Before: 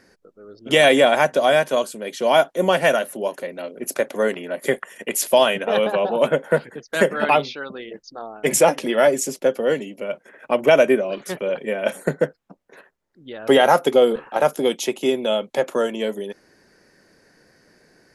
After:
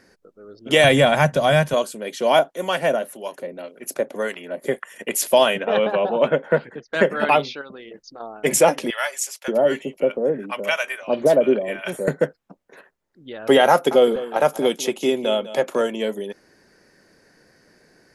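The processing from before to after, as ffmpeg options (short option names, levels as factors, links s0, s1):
-filter_complex "[0:a]asettb=1/sr,asplit=3[s0][s1][s2];[s0]atrim=end=0.844[s3];[s1]atrim=start=0.84:end=1.74,asetpts=PTS-STARTPTS,afade=t=in:d=0.004:c=qsin,afade=t=out:st=0.896:d=0.004:c=qsin,lowshelf=f=210:t=q:w=1.5:g=13[s4];[s2]atrim=start=1.736[s5];[s3][s4]acrossfade=d=0.004:c1=hsin:c2=qsin[s6];[s6][s5]acrossfade=d=0.004:c1=qsin:c2=hsin,asettb=1/sr,asplit=3[s7][s8][s9];[s7]atrim=end=2.394[s10];[s8]atrim=start=2.39:end=4.94,asetpts=PTS-STARTPTS,afade=t=in:d=0.004:c=qsin,afade=t=out:st=2.546:d=0.004:c=qsin,acrossover=split=870[s11][s12];[s11]aeval=exprs='val(0)*(1-0.7/2+0.7/2*cos(2*PI*1.8*n/s))':c=same[s13];[s12]aeval=exprs='val(0)*(1-0.7/2-0.7/2*cos(2*PI*1.8*n/s))':c=same[s14];[s13][s14]amix=inputs=2:normalize=0[s15];[s9]atrim=start=4.936[s16];[s10][s15]acrossfade=d=0.004:c1=hsin:c2=qsin[s17];[s17][s16]acrossfade=d=0.004:c1=qsin:c2=hsin,asettb=1/sr,asplit=3[s18][s19][s20];[s18]atrim=end=5.604[s21];[s19]atrim=start=5.6:end=7.1,asetpts=PTS-STARTPTS,afade=t=in:d=0.004:c=qsin,afade=t=out:st=1.496:d=0.004:c=qsin,lowpass=3800[s22];[s20]atrim=start=7.096[s23];[s21][s22]acrossfade=d=0.004:c1=hsin:c2=qsin[s24];[s24][s23]acrossfade=d=0.004:c1=qsin:c2=hsin,asettb=1/sr,asplit=3[s25][s26][s27];[s25]atrim=end=7.614[s28];[s26]atrim=start=7.61:end=8.2,asetpts=PTS-STARTPTS,afade=t=in:d=0.004:c=qsin,afade=t=out:st=0.586:d=0.004:c=qsin,acompressor=threshold=0.0178:ratio=5:attack=3.2:release=140:knee=1:detection=peak[s29];[s27]atrim=start=8.196[s30];[s28][s29]acrossfade=d=0.004:c1=hsin:c2=qsin[s31];[s31][s30]acrossfade=d=0.004:c1=qsin:c2=hsin,asettb=1/sr,asplit=3[s32][s33][s34];[s32]atrim=end=8.904[s35];[s33]atrim=start=8.9:end=12.08,asetpts=PTS-STARTPTS,afade=t=in:d=0.004:c=qsin,afade=t=out:st=3.176:d=0.004:c=qsin,acrossover=split=900[s36][s37];[s36]adelay=580[s38];[s38][s37]amix=inputs=2:normalize=0,atrim=end_sample=140238[s39];[s34]atrim=start=12.076[s40];[s35][s39]acrossfade=d=0.004:c1=hsin:c2=qsin[s41];[s41][s40]acrossfade=d=0.004:c1=qsin:c2=hsin,asettb=1/sr,asplit=3[s42][s43][s44];[s42]atrim=end=13.714[s45];[s43]atrim=start=13.71:end=15.87,asetpts=PTS-STARTPTS,afade=t=in:d=0.004:c=qsin,afade=t=out:st=2.156:d=0.004:c=qsin,aecho=1:1:200:0.178,atrim=end_sample=95256[s46];[s44]atrim=start=15.866[s47];[s45][s46]acrossfade=d=0.004:c1=hsin:c2=qsin[s48];[s48][s47]acrossfade=d=0.004:c1=qsin:c2=hsin"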